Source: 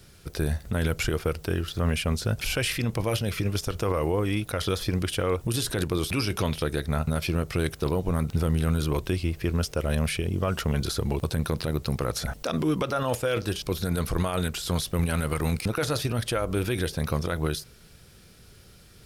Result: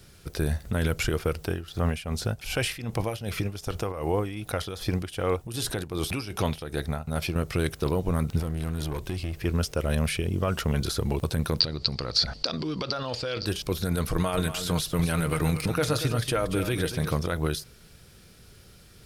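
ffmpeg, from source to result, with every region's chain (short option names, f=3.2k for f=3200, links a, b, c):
-filter_complex "[0:a]asettb=1/sr,asplit=3[a][b][c];[a]atrim=end=1.454[d];[b]atrim=start=1.45:end=7.36,asetpts=PTS-STARTPTS,afade=t=in:d=0.004:c=qsin,afade=t=out:st=5.906:d=0.004:c=qsin,equalizer=f=770:w=4:g=6,tremolo=f=2.6:d=0.7[e];[c]atrim=start=7.356[f];[d][e]acrossfade=d=0.004:c1=hsin:c2=qsin[g];[g][f]acrossfade=d=0.004:c1=qsin:c2=hsin,asettb=1/sr,asplit=3[h][i][j];[h]atrim=end=8.404[k];[i]atrim=start=8.4:end=9.45,asetpts=PTS-STARTPTS,afade=t=in:d=0.004:c=qsin,afade=t=out:st=1.046:d=0.004:c=qsin,acompressor=threshold=-25dB:ratio=6:attack=3.2:release=140:knee=1:detection=peak,aeval=exprs='clip(val(0),-1,0.0355)':c=same[l];[j]atrim=start=9.446[m];[k][l]acrossfade=d=0.004:c1=hsin:c2=qsin[n];[n][m]acrossfade=d=0.004:c1=qsin:c2=hsin,asettb=1/sr,asplit=3[o][p][q];[o]atrim=end=11.604[r];[p]atrim=start=11.6:end=13.46,asetpts=PTS-STARTPTS,afade=t=in:d=0.004:c=qsin,afade=t=out:st=1.856:d=0.004:c=qsin,acompressor=threshold=-29dB:ratio=3:attack=3.2:release=140:knee=1:detection=peak,lowpass=f=4.6k:t=q:w=14[s];[q]atrim=start=13.456[t];[r][s]acrossfade=d=0.004:c1=hsin:c2=qsin[u];[u][t]acrossfade=d=0.004:c1=qsin:c2=hsin,asettb=1/sr,asplit=3[v][w][x];[v]atrim=end=14.094[y];[w]atrim=start=14.09:end=17.15,asetpts=PTS-STARTPTS,afade=t=in:d=0.004:c=qsin,afade=t=out:st=3.056:d=0.004:c=qsin,aecho=1:1:6.5:0.33,atrim=end_sample=134946,aecho=1:1:234:0.299,atrim=end_sample=134946[z];[x]atrim=start=17.146[aa];[y][z]acrossfade=d=0.004:c1=hsin:c2=qsin[ab];[ab][aa]acrossfade=d=0.004:c1=qsin:c2=hsin"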